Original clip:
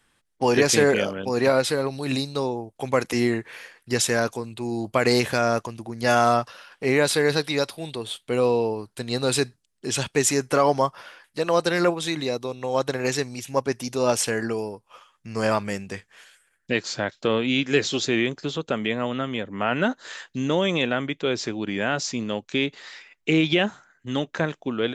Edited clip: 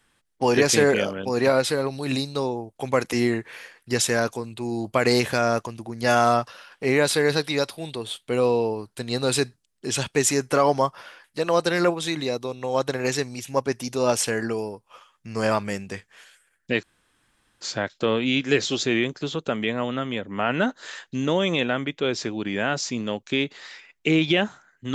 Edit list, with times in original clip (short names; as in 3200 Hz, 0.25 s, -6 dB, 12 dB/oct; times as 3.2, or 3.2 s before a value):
16.83 insert room tone 0.78 s